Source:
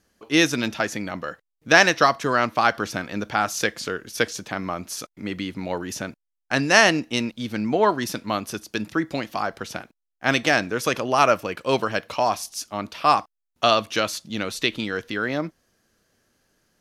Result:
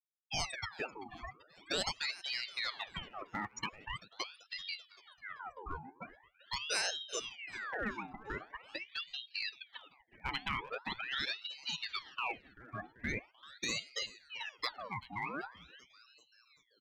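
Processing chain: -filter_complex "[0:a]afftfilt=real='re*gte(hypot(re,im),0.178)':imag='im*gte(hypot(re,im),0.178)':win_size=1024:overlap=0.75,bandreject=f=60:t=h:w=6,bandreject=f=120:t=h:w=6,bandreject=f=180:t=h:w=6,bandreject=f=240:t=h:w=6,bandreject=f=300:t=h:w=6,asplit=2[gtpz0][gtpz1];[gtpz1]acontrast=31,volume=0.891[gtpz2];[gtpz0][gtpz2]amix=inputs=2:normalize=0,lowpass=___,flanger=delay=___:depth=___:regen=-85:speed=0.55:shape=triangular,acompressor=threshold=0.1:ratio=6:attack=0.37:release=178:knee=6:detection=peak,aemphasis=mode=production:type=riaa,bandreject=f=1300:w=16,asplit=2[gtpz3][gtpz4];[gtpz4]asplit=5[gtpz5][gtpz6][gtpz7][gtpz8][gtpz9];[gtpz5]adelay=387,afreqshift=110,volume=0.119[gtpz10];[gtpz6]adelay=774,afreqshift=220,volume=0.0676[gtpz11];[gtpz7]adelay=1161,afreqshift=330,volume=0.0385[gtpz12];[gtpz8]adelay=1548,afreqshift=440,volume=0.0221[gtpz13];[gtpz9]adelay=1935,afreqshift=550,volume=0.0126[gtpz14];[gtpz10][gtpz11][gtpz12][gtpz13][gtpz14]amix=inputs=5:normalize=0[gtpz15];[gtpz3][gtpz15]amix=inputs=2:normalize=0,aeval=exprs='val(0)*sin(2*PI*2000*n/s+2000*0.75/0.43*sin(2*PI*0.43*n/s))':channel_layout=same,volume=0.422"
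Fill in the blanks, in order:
6500, 1.9, 5.2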